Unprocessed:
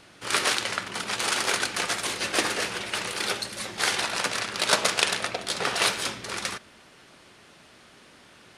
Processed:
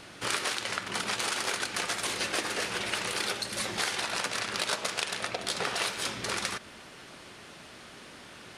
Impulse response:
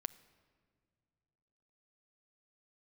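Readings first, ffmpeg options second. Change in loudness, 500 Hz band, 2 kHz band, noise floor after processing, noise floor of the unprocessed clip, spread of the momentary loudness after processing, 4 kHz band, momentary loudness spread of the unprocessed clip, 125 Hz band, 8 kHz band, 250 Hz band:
−4.5 dB, −4.5 dB, −4.5 dB, −49 dBFS, −54 dBFS, 18 LU, −4.5 dB, 7 LU, −2.5 dB, −4.5 dB, −3.5 dB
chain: -af "acompressor=threshold=-33dB:ratio=6,volume=4.5dB"

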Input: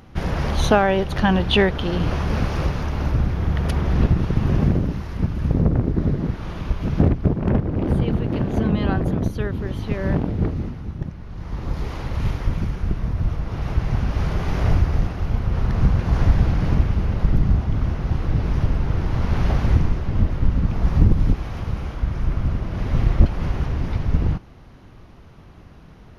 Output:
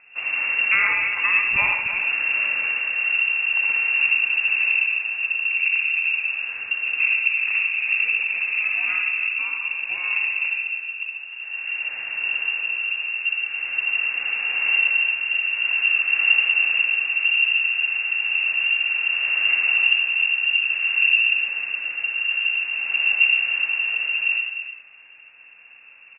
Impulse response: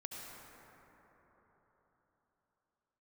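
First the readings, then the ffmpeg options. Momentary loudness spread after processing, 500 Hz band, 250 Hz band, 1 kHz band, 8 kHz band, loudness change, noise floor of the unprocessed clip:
8 LU, below −20 dB, below −30 dB, −8.0 dB, can't be measured, +3.0 dB, −44 dBFS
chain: -filter_complex "[1:a]atrim=start_sample=2205,atrim=end_sample=6615[link_01];[0:a][link_01]afir=irnorm=-1:irlink=0,lowpass=frequency=2400:width_type=q:width=0.5098,lowpass=frequency=2400:width_type=q:width=0.6013,lowpass=frequency=2400:width_type=q:width=0.9,lowpass=frequency=2400:width_type=q:width=2.563,afreqshift=-2800,aecho=1:1:62|303:0.473|0.335"

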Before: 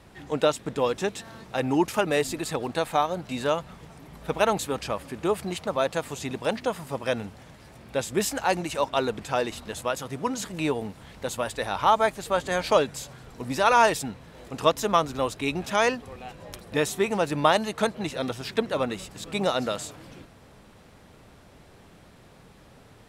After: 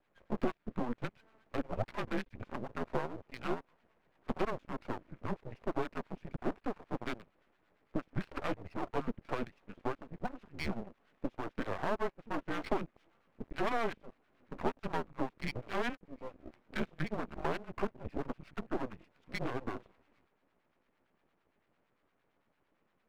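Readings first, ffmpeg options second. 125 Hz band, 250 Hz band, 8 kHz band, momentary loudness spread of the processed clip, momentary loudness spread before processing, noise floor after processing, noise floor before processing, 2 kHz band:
−8.5 dB, −9.0 dB, −27.5 dB, 9 LU, 13 LU, −77 dBFS, −52 dBFS, −12.5 dB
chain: -filter_complex "[0:a]highpass=frequency=410:width_type=q:width=0.5412,highpass=frequency=410:width_type=q:width=1.307,lowpass=frequency=2800:width_type=q:width=0.5176,lowpass=frequency=2800:width_type=q:width=0.7071,lowpass=frequency=2800:width_type=q:width=1.932,afreqshift=-240,afwtdn=0.0178,acompressor=threshold=-32dB:ratio=2.5,acrossover=split=900[link_01][link_02];[link_01]aeval=exprs='val(0)*(1-0.7/2+0.7/2*cos(2*PI*8.8*n/s))':channel_layout=same[link_03];[link_02]aeval=exprs='val(0)*(1-0.7/2-0.7/2*cos(2*PI*8.8*n/s))':channel_layout=same[link_04];[link_03][link_04]amix=inputs=2:normalize=0,aeval=exprs='max(val(0),0)':channel_layout=same,volume=4dB"

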